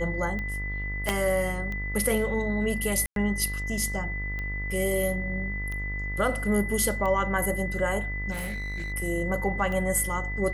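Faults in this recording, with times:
buzz 50 Hz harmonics 34 -33 dBFS
tick 45 rpm -22 dBFS
tone 2000 Hz -33 dBFS
1.09 pop -11 dBFS
3.06–3.16 gap 0.102 s
8.31–8.93 clipped -29 dBFS

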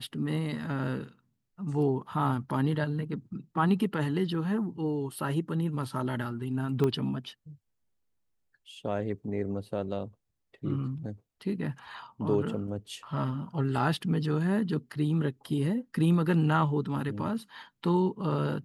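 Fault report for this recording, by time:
6.84 pop -17 dBFS

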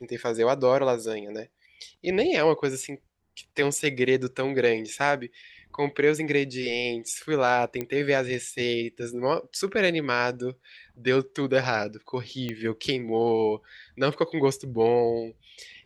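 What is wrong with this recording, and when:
7.81 pop -16 dBFS
12.49 pop -18 dBFS

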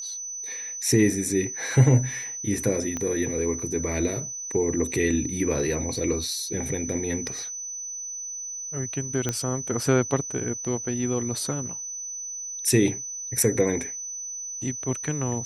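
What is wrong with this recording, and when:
tone 6000 Hz -32 dBFS
2.97 pop -17 dBFS
9.29 pop -11 dBFS

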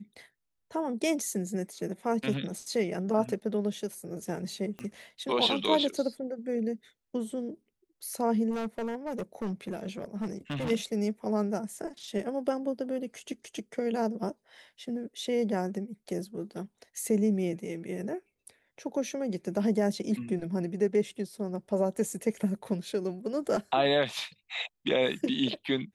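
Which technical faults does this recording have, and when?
4.79 pop -26 dBFS
8.5–10.71 clipped -29 dBFS

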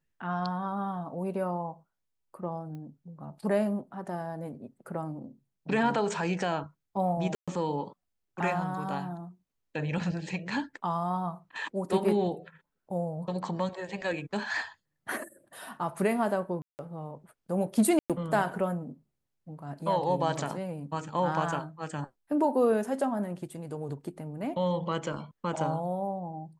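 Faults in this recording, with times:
2.75 pop -33 dBFS
7.35–7.48 gap 0.126 s
16.62–16.79 gap 0.169 s
17.99–18.1 gap 0.107 s

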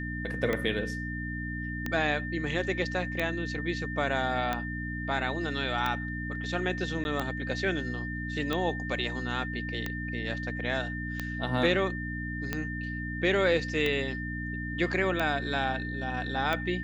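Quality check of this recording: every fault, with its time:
hum 60 Hz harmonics 5 -36 dBFS
tick 45 rpm -16 dBFS
tone 1800 Hz -37 dBFS
7.04–7.05 gap 11 ms

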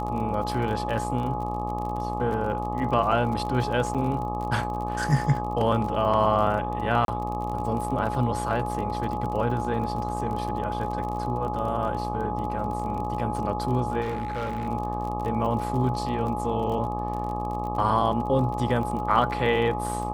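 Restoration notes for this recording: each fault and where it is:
buzz 60 Hz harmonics 21 -32 dBFS
crackle 38/s -32 dBFS
tone 840 Hz -31 dBFS
3.94–3.95 gap 6.7 ms
7.05–7.08 gap 32 ms
14.01–14.68 clipped -25.5 dBFS

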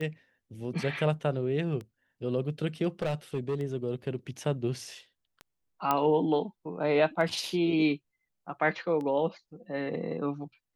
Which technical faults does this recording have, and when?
tick 33 1/3 rpm -27 dBFS
3.02–3.61 clipped -25.5 dBFS
5.91 pop -12 dBFS

